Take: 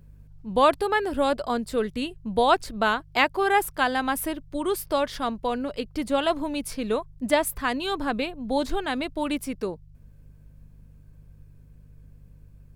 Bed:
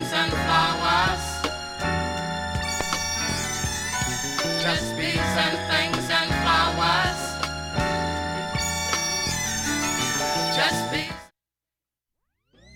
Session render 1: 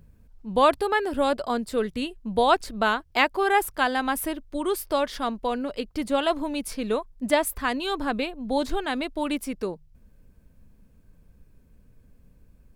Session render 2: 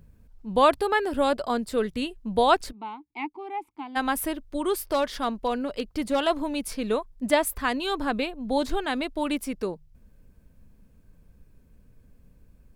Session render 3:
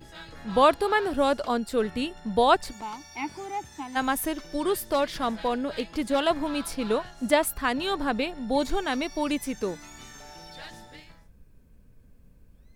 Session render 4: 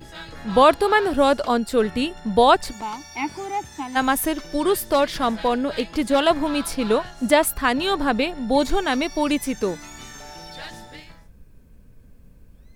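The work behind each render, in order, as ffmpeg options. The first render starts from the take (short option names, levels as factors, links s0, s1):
-af "bandreject=f=50:t=h:w=4,bandreject=f=100:t=h:w=4,bandreject=f=150:t=h:w=4"
-filter_complex "[0:a]asplit=3[s0][s1][s2];[s0]afade=t=out:st=2.71:d=0.02[s3];[s1]asplit=3[s4][s5][s6];[s4]bandpass=f=300:t=q:w=8,volume=1[s7];[s5]bandpass=f=870:t=q:w=8,volume=0.501[s8];[s6]bandpass=f=2240:t=q:w=8,volume=0.355[s9];[s7][s8][s9]amix=inputs=3:normalize=0,afade=t=in:st=2.71:d=0.02,afade=t=out:st=3.95:d=0.02[s10];[s2]afade=t=in:st=3.95:d=0.02[s11];[s3][s10][s11]amix=inputs=3:normalize=0,asettb=1/sr,asplit=3[s12][s13][s14];[s12]atrim=end=4.894[s15];[s13]atrim=start=4.89:end=6.27,asetpts=PTS-STARTPTS,afade=t=in:d=0.004:c=qsin,afade=t=out:st=1.376:d=0.004:c=qsin,asoftclip=type=hard:threshold=0.133[s16];[s14]atrim=start=6.266[s17];[s15][s16]acrossfade=d=0.004:c1=hsin:c2=qsin[s18];[s18][s17]acrossfade=d=0.004:c1=qsin:c2=hsin"
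-filter_complex "[1:a]volume=0.0841[s0];[0:a][s0]amix=inputs=2:normalize=0"
-af "volume=2,alimiter=limit=0.708:level=0:latency=1"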